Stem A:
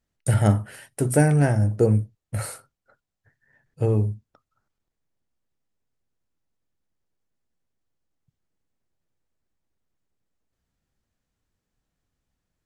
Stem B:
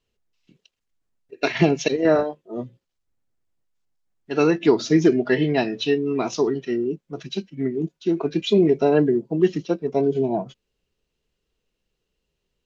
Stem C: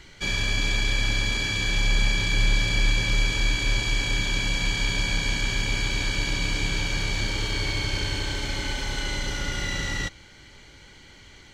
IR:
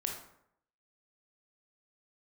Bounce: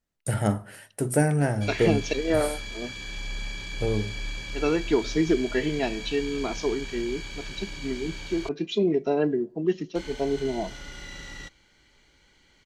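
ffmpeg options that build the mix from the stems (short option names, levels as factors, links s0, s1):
-filter_complex "[0:a]volume=0.668,asplit=2[s0][s1];[s1]volume=0.126[s2];[1:a]adelay=250,volume=0.473,asplit=2[s3][s4];[s4]volume=0.075[s5];[2:a]adelay=1400,volume=0.266,asplit=3[s6][s7][s8];[s6]atrim=end=8.49,asetpts=PTS-STARTPTS,afade=t=out:st=8.486:d=0.004:c=hsin[s9];[s7]atrim=start=8.49:end=9.95,asetpts=PTS-STARTPTS,volume=0[s10];[s8]atrim=start=9.95,asetpts=PTS-STARTPTS,afade=t=in:d=0.004:c=hsin[s11];[s9][s10][s11]concat=n=3:v=0:a=1[s12];[3:a]atrim=start_sample=2205[s13];[s2][s5]amix=inputs=2:normalize=0[s14];[s14][s13]afir=irnorm=-1:irlink=0[s15];[s0][s3][s12][s15]amix=inputs=4:normalize=0,equalizer=f=100:w=1.6:g=-6.5"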